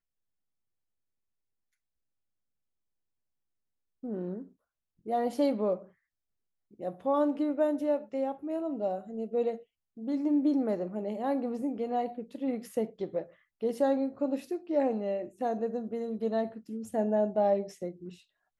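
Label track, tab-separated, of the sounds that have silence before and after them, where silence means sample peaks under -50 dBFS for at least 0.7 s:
4.030000	5.880000	sound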